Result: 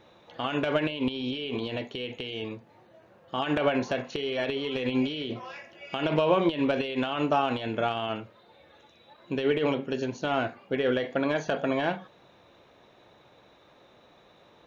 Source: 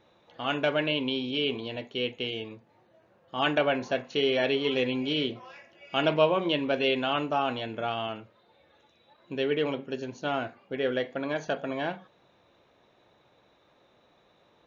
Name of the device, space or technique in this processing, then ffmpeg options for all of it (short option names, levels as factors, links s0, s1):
de-esser from a sidechain: -filter_complex "[0:a]asplit=2[s0][s1];[s1]highpass=5500,apad=whole_len=646797[s2];[s0][s2]sidechaincompress=threshold=0.00251:ratio=8:attack=3.5:release=47,volume=2"